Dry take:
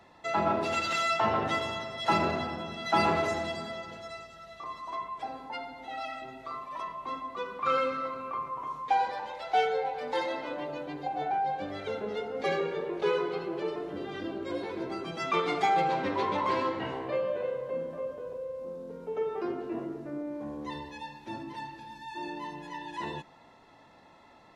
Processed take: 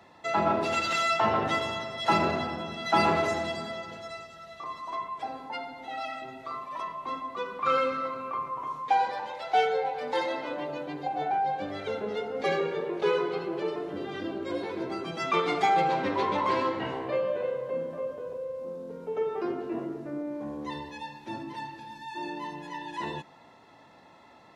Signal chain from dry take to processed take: high-pass 73 Hz; trim +2 dB

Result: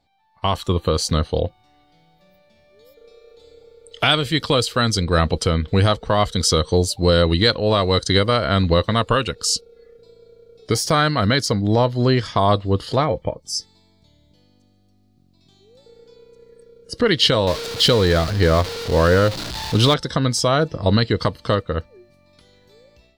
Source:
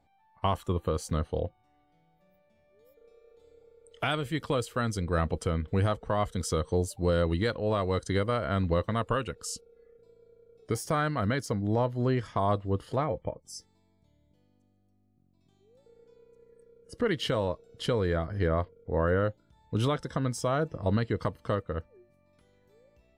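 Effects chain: 17.47–19.94 s: jump at every zero crossing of -35.5 dBFS; level rider gain up to 10 dB; peaking EQ 4.3 kHz +14 dB 0.98 oct

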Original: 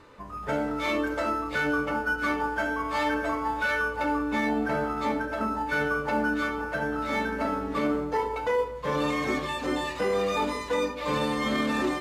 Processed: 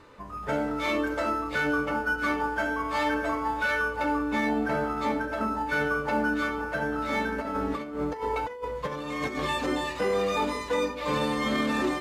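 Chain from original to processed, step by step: 7.38–9.66 s: compressor with a negative ratio -30 dBFS, ratio -0.5

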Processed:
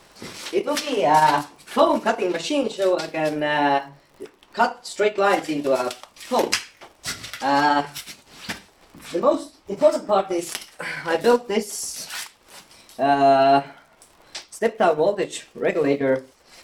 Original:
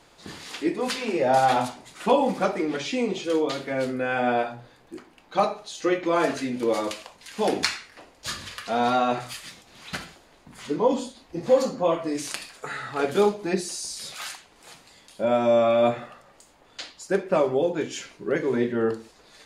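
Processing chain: crackle 50 per s -42 dBFS; transient shaper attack -2 dB, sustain -7 dB; tape speed +17%; trim +4.5 dB

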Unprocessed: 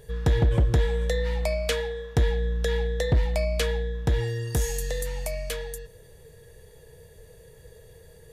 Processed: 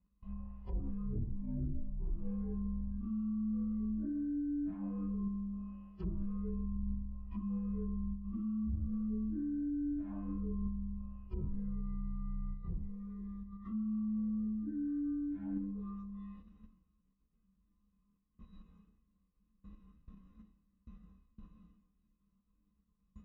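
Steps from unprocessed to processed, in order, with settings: frequency axis rescaled in octaves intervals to 129%; spectral noise reduction 16 dB; gate with hold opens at -59 dBFS; high-pass 50 Hz 24 dB/octave; peaking EQ 200 Hz +15 dB 0.68 oct; in parallel at +0.5 dB: level held to a coarse grid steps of 23 dB; on the sum: peak limiter -27.5 dBFS, peak gain reduction 10.5 dB; reverse; compression 6:1, threshold -44 dBFS, peak gain reduction 11.5 dB; reverse; wide varispeed 0.358×; low-pass that closes with the level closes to 430 Hz, closed at -45.5 dBFS; tape spacing loss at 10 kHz 37 dB; trim +10.5 dB

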